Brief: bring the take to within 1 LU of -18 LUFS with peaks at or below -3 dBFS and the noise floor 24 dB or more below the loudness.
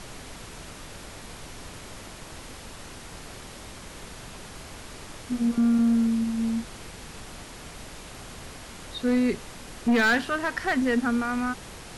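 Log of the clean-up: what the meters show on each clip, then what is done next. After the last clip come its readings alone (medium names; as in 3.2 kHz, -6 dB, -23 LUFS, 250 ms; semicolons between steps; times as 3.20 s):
clipped samples 1.0%; clipping level -17.5 dBFS; noise floor -43 dBFS; noise floor target -49 dBFS; loudness -25.0 LUFS; peak level -17.5 dBFS; loudness target -18.0 LUFS
-> clip repair -17.5 dBFS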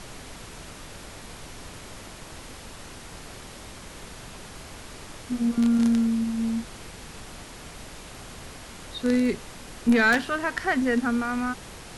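clipped samples 0.0%; noise floor -43 dBFS; noise floor target -49 dBFS
-> noise print and reduce 6 dB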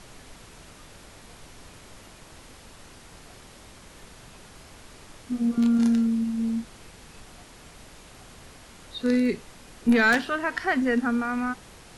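noise floor -49 dBFS; loudness -24.5 LUFS; peak level -8.5 dBFS; loudness target -18.0 LUFS
-> trim +6.5 dB; peak limiter -3 dBFS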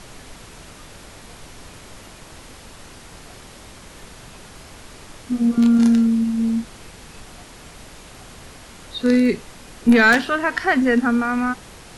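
loudness -18.0 LUFS; peak level -3.0 dBFS; noise floor -42 dBFS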